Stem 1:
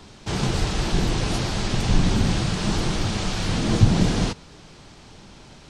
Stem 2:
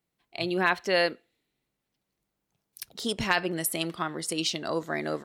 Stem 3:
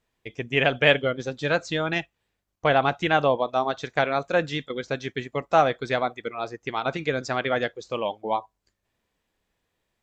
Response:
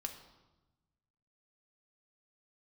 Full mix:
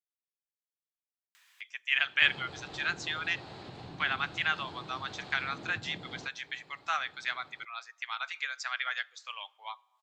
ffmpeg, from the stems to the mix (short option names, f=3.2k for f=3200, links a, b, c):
-filter_complex "[0:a]highshelf=f=2.9k:g=-11.5,adelay=1950,volume=-10.5dB[a];[2:a]highpass=f=1.3k:w=0.5412,highpass=f=1.3k:w=1.3066,adelay=1350,volume=-4dB,asplit=2[b][c];[c]volume=-15dB[d];[a]highpass=150,equalizer=f=210:t=q:w=4:g=-10,equalizer=f=780:t=q:w=4:g=4,equalizer=f=4.1k:t=q:w=4:g=8,equalizer=f=5.9k:t=q:w=4:g=-10,lowpass=f=7.8k:w=0.5412,lowpass=f=7.8k:w=1.3066,acompressor=threshold=-43dB:ratio=6,volume=0dB[e];[3:a]atrim=start_sample=2205[f];[d][f]afir=irnorm=-1:irlink=0[g];[b][e][g]amix=inputs=3:normalize=0,acompressor=mode=upward:threshold=-47dB:ratio=2.5"